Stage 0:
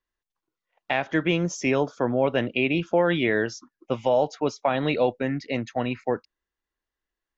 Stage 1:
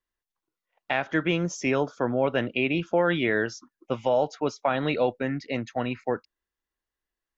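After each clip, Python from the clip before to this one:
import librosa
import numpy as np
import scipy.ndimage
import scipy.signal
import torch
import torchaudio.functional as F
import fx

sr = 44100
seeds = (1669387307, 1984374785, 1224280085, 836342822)

y = fx.dynamic_eq(x, sr, hz=1400.0, q=3.2, threshold_db=-44.0, ratio=4.0, max_db=5)
y = y * librosa.db_to_amplitude(-2.0)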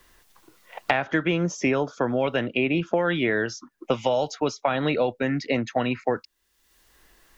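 y = fx.band_squash(x, sr, depth_pct=100)
y = y * librosa.db_to_amplitude(1.0)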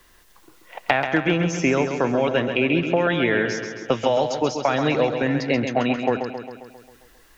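y = fx.echo_feedback(x, sr, ms=134, feedback_pct=59, wet_db=-7.5)
y = y * librosa.db_to_amplitude(2.5)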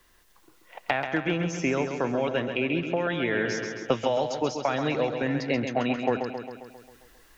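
y = fx.rider(x, sr, range_db=10, speed_s=0.5)
y = y * librosa.db_to_amplitude(-5.5)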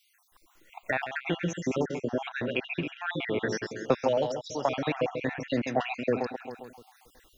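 y = fx.spec_dropout(x, sr, seeds[0], share_pct=48)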